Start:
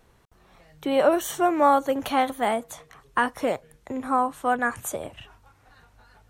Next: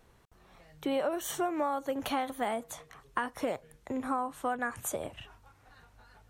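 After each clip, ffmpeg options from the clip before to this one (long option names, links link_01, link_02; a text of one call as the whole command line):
ffmpeg -i in.wav -af "acompressor=threshold=-25dB:ratio=6,volume=-3dB" out.wav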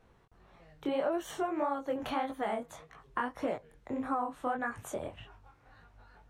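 ffmpeg -i in.wav -af "flanger=delay=17.5:depth=7.1:speed=1.7,lowpass=frequency=2500:poles=1,volume=2.5dB" out.wav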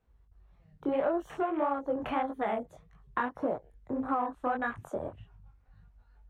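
ffmpeg -i in.wav -af "aeval=exprs='val(0)+0.000708*(sin(2*PI*50*n/s)+sin(2*PI*2*50*n/s)/2+sin(2*PI*3*50*n/s)/3+sin(2*PI*4*50*n/s)/4+sin(2*PI*5*50*n/s)/5)':channel_layout=same,afwtdn=0.00631,volume=2.5dB" out.wav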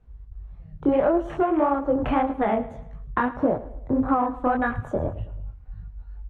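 ffmpeg -i in.wav -af "aemphasis=mode=reproduction:type=bsi,aecho=1:1:109|218|327|436:0.15|0.0658|0.029|0.0127,volume=7dB" out.wav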